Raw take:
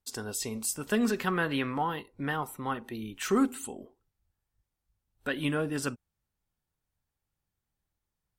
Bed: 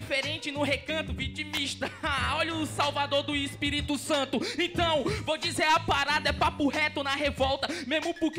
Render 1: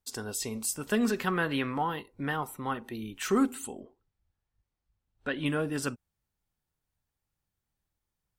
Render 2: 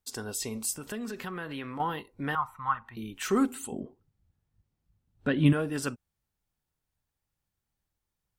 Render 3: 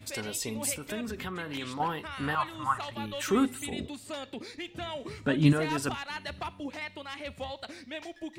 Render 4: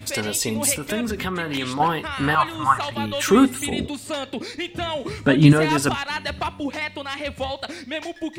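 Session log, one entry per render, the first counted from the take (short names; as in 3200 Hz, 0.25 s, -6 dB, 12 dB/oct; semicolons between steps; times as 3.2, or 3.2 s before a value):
3.8–5.46 air absorption 100 m
0.75–1.8 compressor 3:1, threshold -36 dBFS; 2.35–2.97 EQ curve 110 Hz 0 dB, 400 Hz -26 dB, 1100 Hz +9 dB, 1700 Hz +1 dB, 3100 Hz -9 dB, 9700 Hz -18 dB; 3.72–5.53 bell 150 Hz +13 dB 2.5 oct
add bed -11.5 dB
gain +10.5 dB; limiter -2 dBFS, peak gain reduction 2.5 dB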